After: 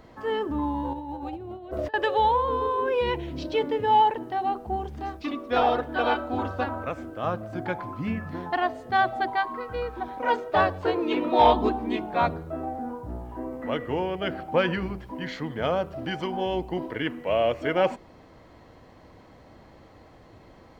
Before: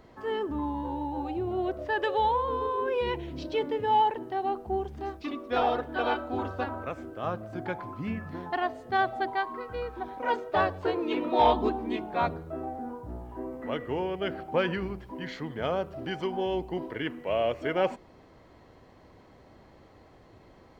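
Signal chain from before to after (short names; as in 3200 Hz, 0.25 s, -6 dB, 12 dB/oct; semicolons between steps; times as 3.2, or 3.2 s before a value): notch 390 Hz, Q 12; 0.93–1.94 negative-ratio compressor -37 dBFS, ratio -0.5; gain +4 dB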